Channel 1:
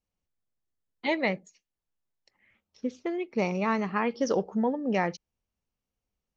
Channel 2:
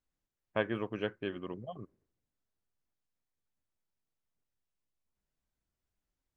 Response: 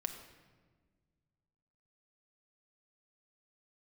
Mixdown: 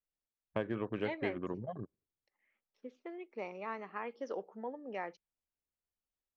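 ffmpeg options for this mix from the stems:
-filter_complex "[0:a]acrossover=split=280 3300:gain=0.0891 1 0.178[a][b][c];[a][b][c]amix=inputs=3:normalize=0,volume=-12dB[d];[1:a]afwtdn=0.00251,acrossover=split=580|2000[e][f][g];[e]acompressor=threshold=-36dB:ratio=4[h];[f]acompressor=threshold=-47dB:ratio=4[i];[g]acompressor=threshold=-57dB:ratio=4[j];[h][i][j]amix=inputs=3:normalize=0,volume=3dB[k];[d][k]amix=inputs=2:normalize=0"

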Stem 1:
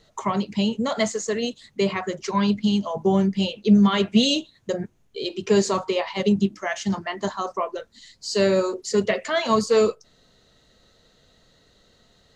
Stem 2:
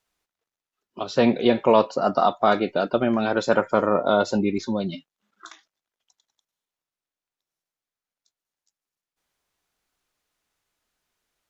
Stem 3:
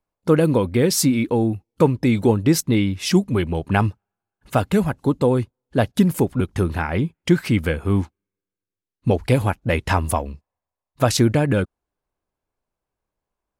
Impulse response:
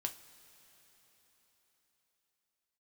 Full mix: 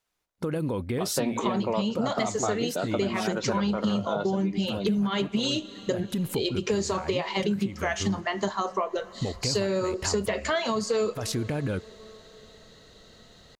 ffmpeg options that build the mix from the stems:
-filter_complex "[0:a]alimiter=limit=-13.5dB:level=0:latency=1,adelay=1200,volume=2.5dB,asplit=2[a][b];[b]volume=-5.5dB[c];[1:a]volume=-2dB[d];[2:a]alimiter=limit=-14dB:level=0:latency=1:release=64,adelay=150,volume=-5.5dB[e];[3:a]atrim=start_sample=2205[f];[c][f]afir=irnorm=-1:irlink=0[g];[a][d][e][g]amix=inputs=4:normalize=0,acompressor=threshold=-24dB:ratio=6"

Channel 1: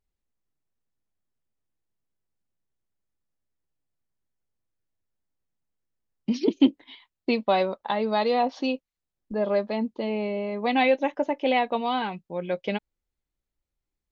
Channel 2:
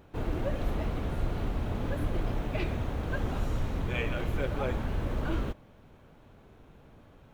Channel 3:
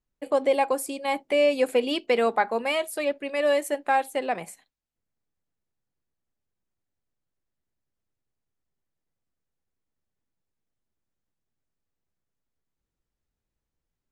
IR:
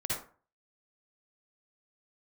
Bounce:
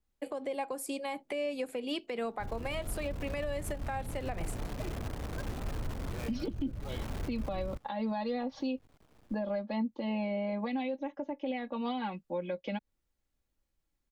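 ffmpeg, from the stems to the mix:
-filter_complex "[0:a]aecho=1:1:3.6:0.87,adynamicequalizer=threshold=0.0141:dfrequency=1800:dqfactor=0.7:tfrequency=1800:tqfactor=0.7:attack=5:release=100:ratio=0.375:range=1.5:mode=cutabove:tftype=highshelf,volume=-2dB[a];[1:a]lowpass=1.4k,acrusher=bits=7:dc=4:mix=0:aa=0.000001,adelay=2250,volume=-6dB[b];[2:a]volume=-1.5dB[c];[a][b][c]amix=inputs=3:normalize=0,acrossover=split=190[d][e];[e]acompressor=threshold=-32dB:ratio=6[f];[d][f]amix=inputs=2:normalize=0,alimiter=level_in=2dB:limit=-24dB:level=0:latency=1:release=106,volume=-2dB"

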